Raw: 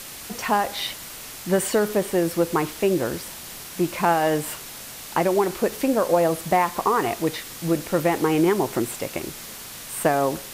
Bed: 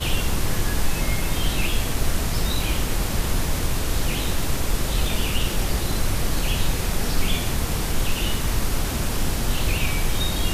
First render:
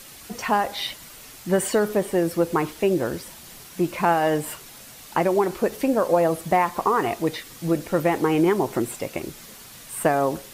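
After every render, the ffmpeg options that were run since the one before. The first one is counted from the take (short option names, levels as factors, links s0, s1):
-af "afftdn=nr=7:nf=-38"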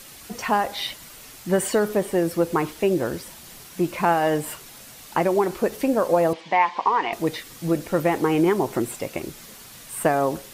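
-filter_complex "[0:a]asettb=1/sr,asplit=3[s0][s1][s2];[s0]atrim=end=6.334[s3];[s1]atrim=start=6.33:end=7.13,asetpts=PTS-STARTPTS,afade=t=in:d=0.004:c=qsin,afade=t=out:st=0.796:d=0.004:c=qsin,highpass=370,equalizer=f=400:t=q:w=4:g=-7,equalizer=f=630:t=q:w=4:g=-6,equalizer=f=950:t=q:w=4:g=7,equalizer=f=1300:t=q:w=4:g=-8,equalizer=f=2200:t=q:w=4:g=6,equalizer=f=3100:t=q:w=4:g=5,lowpass=f=5100:w=0.5412,lowpass=f=5100:w=1.3066[s4];[s2]atrim=start=7.126[s5];[s3][s4]acrossfade=d=0.004:c1=hsin:c2=qsin[s6];[s6][s5]acrossfade=d=0.004:c1=qsin:c2=hsin"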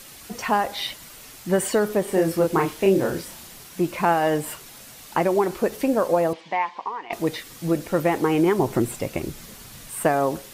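-filter_complex "[0:a]asettb=1/sr,asplit=3[s0][s1][s2];[s0]atrim=end=2.044[s3];[s1]atrim=start=2.04:end=3.47,asetpts=PTS-STARTPTS,afade=t=in:d=0.004:c=qsin,afade=t=out:st=1.426:d=0.004:c=qsin,asplit=2[s4][s5];[s5]adelay=31,volume=0.708[s6];[s4][s6]amix=inputs=2:normalize=0,atrim=end_sample=63063[s7];[s2]atrim=start=3.466[s8];[s3][s7]acrossfade=d=0.004:c1=hsin:c2=qsin[s9];[s9][s8]acrossfade=d=0.004:c1=qsin:c2=hsin,asettb=1/sr,asplit=3[s10][s11][s12];[s10]atrim=end=8.594[s13];[s11]atrim=start=8.59:end=9.9,asetpts=PTS-STARTPTS,afade=t=in:d=0.004:c=qsin,afade=t=out:st=1.306:d=0.004:c=qsin,lowshelf=f=180:g=10[s14];[s12]atrim=start=9.896[s15];[s13][s14]acrossfade=d=0.004:c1=hsin:c2=qsin[s16];[s16][s15]acrossfade=d=0.004:c1=qsin:c2=hsin,asplit=2[s17][s18];[s17]atrim=end=7.1,asetpts=PTS-STARTPTS,afade=t=out:st=6.01:d=1.09:silence=0.16788[s19];[s18]atrim=start=7.1,asetpts=PTS-STARTPTS,afade=t=in:d=0.004:c=hsin:silence=0.16788[s20];[s19][s20]concat=n=2:v=0:a=1"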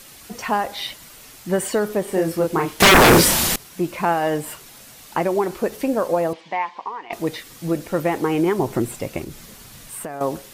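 -filter_complex "[0:a]asettb=1/sr,asplit=3[s0][s1][s2];[s0]atrim=end=2.804[s3];[s1]atrim=start=2.8:end=3.56,asetpts=PTS-STARTPTS,afade=t=in:d=0.004:c=qsin,afade=t=out:st=0.756:d=0.004:c=qsin,aeval=exprs='0.447*sin(PI/2*8.91*val(0)/0.447)':c=same[s4];[s2]atrim=start=3.556[s5];[s3][s4]acrossfade=d=0.004:c1=hsin:c2=qsin[s6];[s6][s5]acrossfade=d=0.004:c1=qsin:c2=hsin,asettb=1/sr,asplit=3[s7][s8][s9];[s7]atrim=end=9.234[s10];[s8]atrim=start=9.23:end=10.21,asetpts=PTS-STARTPTS,afade=t=in:d=0.004:c=qsin,afade=t=out:st=0.976:d=0.004:c=qsin,acompressor=threshold=0.0398:ratio=6:attack=3.2:release=140:knee=1:detection=peak[s11];[s9]atrim=start=10.206[s12];[s10][s11]acrossfade=d=0.004:c1=hsin:c2=qsin[s13];[s13][s12]acrossfade=d=0.004:c1=qsin:c2=hsin"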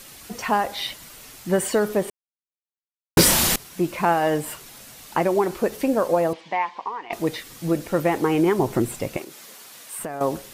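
-filter_complex "[0:a]asettb=1/sr,asplit=3[s0][s1][s2];[s0]atrim=end=9.174[s3];[s1]atrim=start=9.17:end=9.99,asetpts=PTS-STARTPTS,afade=t=in:d=0.004:c=qsin,afade=t=out:st=0.816:d=0.004:c=qsin,highpass=420[s4];[s2]atrim=start=9.986[s5];[s3][s4]acrossfade=d=0.004:c1=hsin:c2=qsin[s6];[s6][s5]acrossfade=d=0.004:c1=qsin:c2=hsin,asplit=3[s7][s8][s9];[s7]atrim=end=2.1,asetpts=PTS-STARTPTS,afade=t=out:st=2.096:d=0.004:c=hsin[s10];[s8]atrim=start=2.1:end=3.17,asetpts=PTS-STARTPTS,volume=0[s11];[s9]atrim=start=3.17,asetpts=PTS-STARTPTS,afade=t=in:d=0.004:c=hsin[s12];[s10][s11][s12]concat=n=3:v=0:a=1"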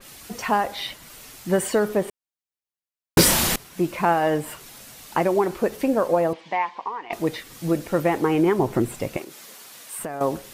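-af "adynamicequalizer=threshold=0.01:dfrequency=3200:dqfactor=0.7:tfrequency=3200:tqfactor=0.7:attack=5:release=100:ratio=0.375:range=3:mode=cutabove:tftype=highshelf"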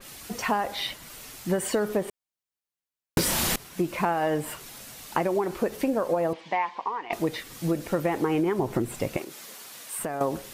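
-af "acompressor=threshold=0.0891:ratio=10"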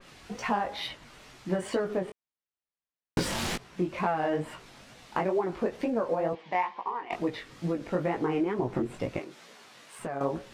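-af "adynamicsmooth=sensitivity=2.5:basefreq=4300,flanger=delay=16:depth=6.3:speed=2.2"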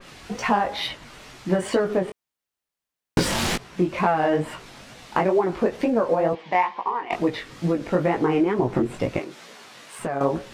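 -af "volume=2.37"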